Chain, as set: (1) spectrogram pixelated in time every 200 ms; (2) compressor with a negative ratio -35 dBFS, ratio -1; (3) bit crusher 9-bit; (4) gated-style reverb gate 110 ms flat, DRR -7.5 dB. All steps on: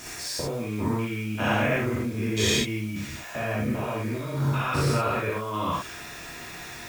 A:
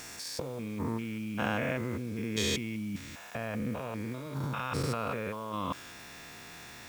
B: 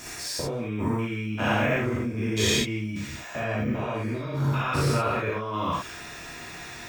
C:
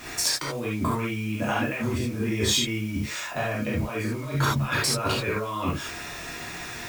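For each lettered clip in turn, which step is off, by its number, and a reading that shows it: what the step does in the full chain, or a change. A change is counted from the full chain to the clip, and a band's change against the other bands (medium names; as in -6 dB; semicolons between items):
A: 4, crest factor change +4.0 dB; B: 3, distortion -23 dB; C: 1, 8 kHz band +5.0 dB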